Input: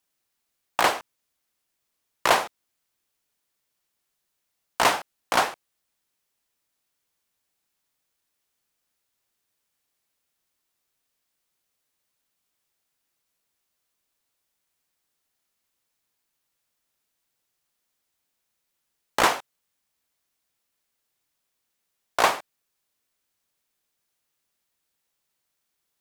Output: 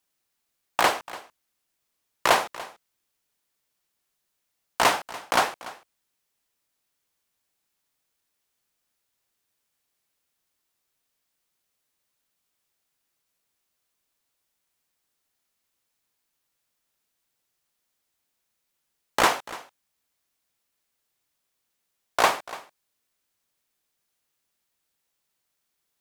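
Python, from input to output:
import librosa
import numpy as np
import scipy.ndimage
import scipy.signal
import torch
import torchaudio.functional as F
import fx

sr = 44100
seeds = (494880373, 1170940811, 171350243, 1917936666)

y = x + 10.0 ** (-18.0 / 20.0) * np.pad(x, (int(290 * sr / 1000.0), 0))[:len(x)]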